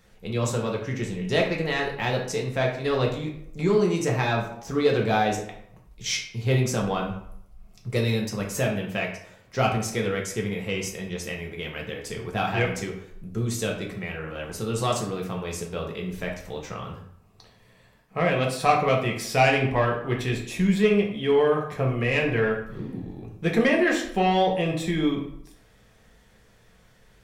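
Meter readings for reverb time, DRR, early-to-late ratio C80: 0.75 s, -0.5 dB, 10.0 dB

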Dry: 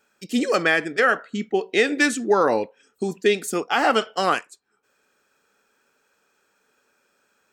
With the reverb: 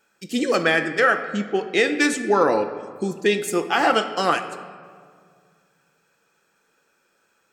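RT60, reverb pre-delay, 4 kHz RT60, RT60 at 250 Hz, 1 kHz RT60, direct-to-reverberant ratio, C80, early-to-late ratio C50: 2.0 s, 6 ms, 1.1 s, 2.7 s, 1.9 s, 6.5 dB, 12.0 dB, 10.5 dB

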